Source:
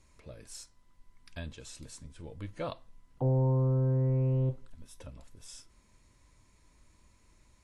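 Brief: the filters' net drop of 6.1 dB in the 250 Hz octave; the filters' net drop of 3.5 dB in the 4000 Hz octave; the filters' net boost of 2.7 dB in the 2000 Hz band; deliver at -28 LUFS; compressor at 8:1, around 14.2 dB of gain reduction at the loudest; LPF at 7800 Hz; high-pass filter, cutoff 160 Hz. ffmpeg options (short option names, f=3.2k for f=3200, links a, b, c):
-af "highpass=160,lowpass=7.8k,equalizer=f=250:t=o:g=-6,equalizer=f=2k:t=o:g=5,equalizer=f=4k:t=o:g=-5.5,acompressor=threshold=-44dB:ratio=8,volume=22.5dB"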